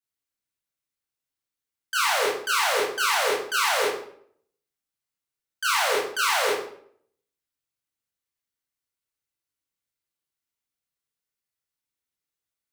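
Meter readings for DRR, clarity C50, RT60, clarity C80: -5.5 dB, 2.5 dB, 0.60 s, 7.0 dB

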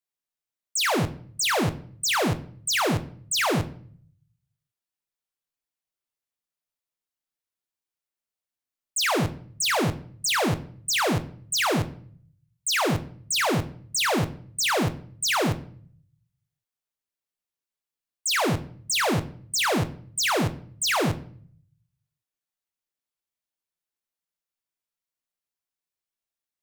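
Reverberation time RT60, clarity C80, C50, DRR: 0.55 s, 19.0 dB, 15.5 dB, 8.5 dB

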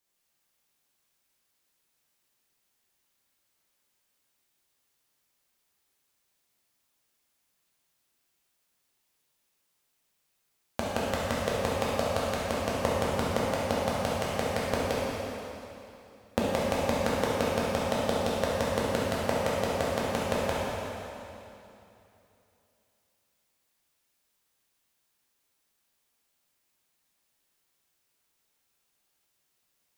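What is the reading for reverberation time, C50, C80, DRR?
2.9 s, -3.0 dB, -1.5 dB, -6.5 dB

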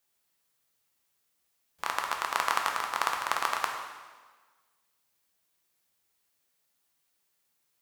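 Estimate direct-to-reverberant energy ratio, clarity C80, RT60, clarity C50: 1.0 dB, 6.0 dB, 1.4 s, 4.0 dB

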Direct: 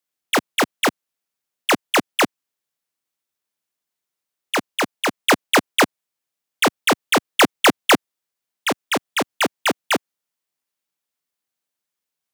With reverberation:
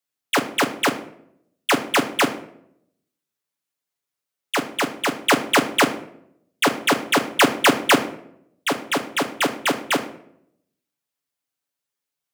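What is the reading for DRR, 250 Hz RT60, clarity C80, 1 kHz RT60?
2.5 dB, 0.90 s, 15.5 dB, 0.60 s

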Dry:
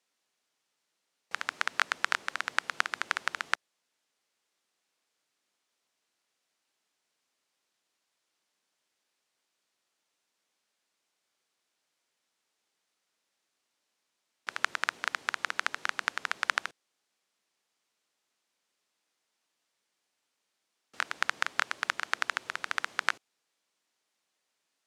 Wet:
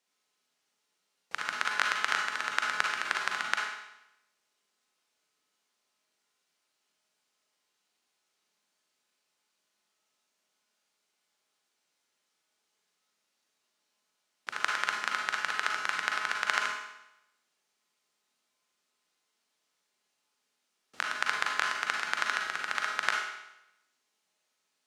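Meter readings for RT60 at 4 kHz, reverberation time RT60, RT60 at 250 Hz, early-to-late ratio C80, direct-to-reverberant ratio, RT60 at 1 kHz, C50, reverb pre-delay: 0.85 s, 0.85 s, 0.90 s, 4.5 dB, -0.5 dB, 0.85 s, 1.5 dB, 37 ms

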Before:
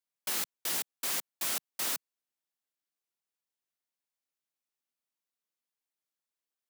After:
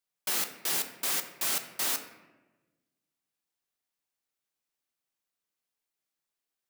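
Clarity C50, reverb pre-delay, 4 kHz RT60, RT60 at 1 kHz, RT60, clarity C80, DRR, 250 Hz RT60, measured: 10.0 dB, 3 ms, 0.70 s, 1.1 s, 1.2 s, 12.0 dB, 6.0 dB, 1.6 s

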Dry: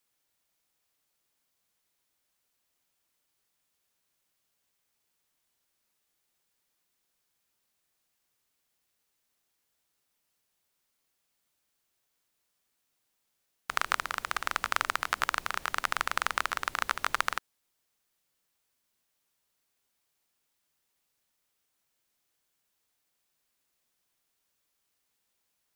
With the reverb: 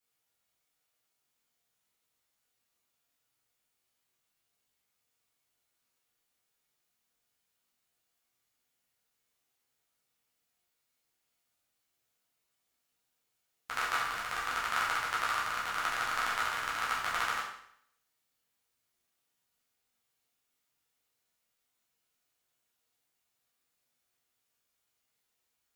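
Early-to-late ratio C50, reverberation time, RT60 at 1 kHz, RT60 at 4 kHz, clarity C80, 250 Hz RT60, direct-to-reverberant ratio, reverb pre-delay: 3.5 dB, 0.65 s, 0.65 s, 0.65 s, 6.5 dB, 0.70 s, -7.5 dB, 8 ms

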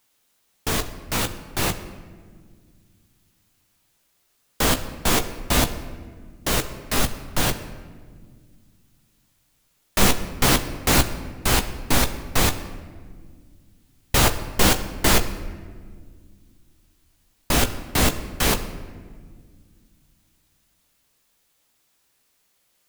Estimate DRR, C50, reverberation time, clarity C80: 7.0 dB, 12.5 dB, 1.8 s, 13.5 dB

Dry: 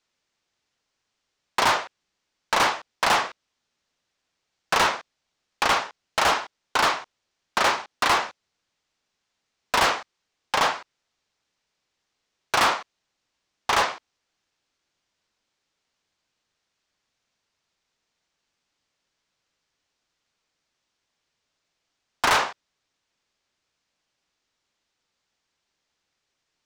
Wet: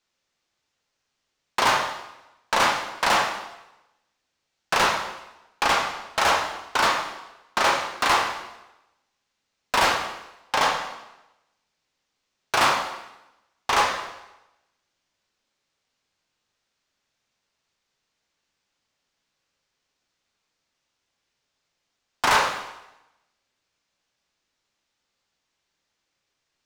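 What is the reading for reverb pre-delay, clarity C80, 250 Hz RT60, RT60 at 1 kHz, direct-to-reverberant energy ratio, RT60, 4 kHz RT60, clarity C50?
6 ms, 8.5 dB, 0.90 s, 0.95 s, 3.0 dB, 0.95 s, 0.90 s, 6.5 dB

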